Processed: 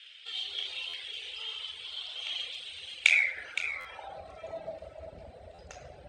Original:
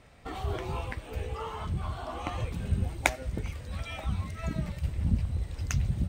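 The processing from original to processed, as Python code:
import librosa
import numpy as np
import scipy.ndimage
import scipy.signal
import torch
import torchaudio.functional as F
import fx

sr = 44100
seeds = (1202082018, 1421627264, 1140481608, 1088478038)

p1 = fx.graphic_eq_10(x, sr, hz=(125, 250, 500, 1000, 4000, 8000), db=(-12, -9, 6, -8, 10, 12))
p2 = fx.room_shoebox(p1, sr, seeds[0], volume_m3=3400.0, walls='mixed', distance_m=4.4)
p3 = fx.dmg_noise_band(p2, sr, seeds[1], low_hz=1300.0, high_hz=3300.0, level_db=-51.0)
p4 = fx.filter_sweep_bandpass(p3, sr, from_hz=3200.0, to_hz=690.0, start_s=2.92, end_s=4.26, q=5.1)
p5 = p4 + fx.echo_single(p4, sr, ms=516, db=-10.5, dry=0)
p6 = fx.dereverb_blind(p5, sr, rt60_s=0.73)
p7 = fx.buffer_glitch(p6, sr, at_s=(0.89, 3.8, 5.54), block=512, repeats=3)
y = p7 * 10.0 ** (5.0 / 20.0)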